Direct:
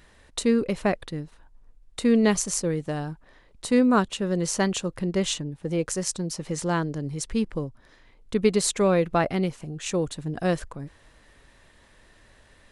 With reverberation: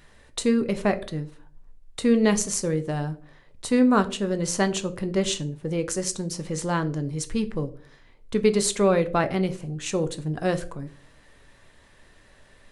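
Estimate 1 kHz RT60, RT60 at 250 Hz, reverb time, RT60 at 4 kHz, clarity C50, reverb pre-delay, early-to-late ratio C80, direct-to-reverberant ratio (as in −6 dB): 0.40 s, 0.50 s, 0.45 s, 0.30 s, 17.0 dB, 5 ms, 21.0 dB, 8.5 dB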